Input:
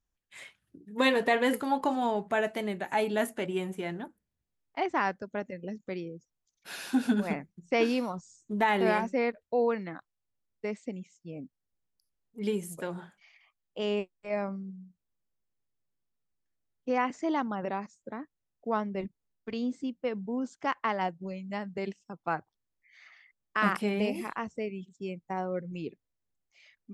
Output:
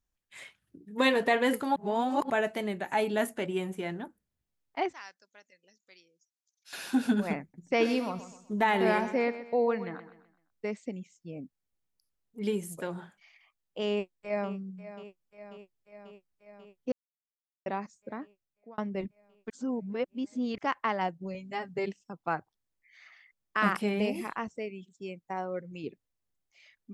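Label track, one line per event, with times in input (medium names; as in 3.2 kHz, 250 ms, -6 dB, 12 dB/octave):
1.760000	2.300000	reverse
4.930000	6.730000	band-pass filter 5.9 kHz, Q 1.6
7.410000	10.700000	feedback delay 127 ms, feedback 39%, level -13 dB
13.890000	14.490000	echo throw 540 ms, feedback 75%, level -14 dB
16.920000	17.660000	mute
18.210000	18.780000	fade out
19.500000	20.580000	reverse
21.340000	21.860000	comb 7.4 ms, depth 78%
24.480000	25.840000	bass shelf 260 Hz -8 dB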